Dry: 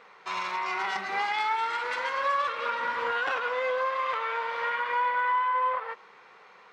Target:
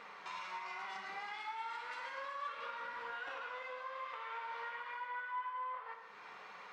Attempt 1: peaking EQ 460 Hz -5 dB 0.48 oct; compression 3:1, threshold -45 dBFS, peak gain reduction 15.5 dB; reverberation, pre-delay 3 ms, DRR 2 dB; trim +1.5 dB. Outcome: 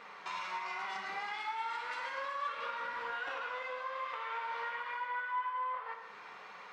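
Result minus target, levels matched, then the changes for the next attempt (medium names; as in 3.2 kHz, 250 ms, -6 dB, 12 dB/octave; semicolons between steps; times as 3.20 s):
compression: peak gain reduction -5 dB
change: compression 3:1, threshold -52.5 dBFS, peak gain reduction 20.5 dB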